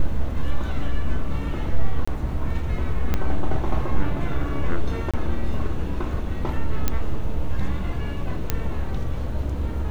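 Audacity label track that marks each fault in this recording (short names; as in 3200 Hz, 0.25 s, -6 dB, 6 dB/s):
2.050000	2.080000	gap 25 ms
3.140000	3.140000	pop -9 dBFS
5.110000	5.140000	gap 26 ms
6.880000	6.880000	pop -6 dBFS
8.500000	8.500000	pop -6 dBFS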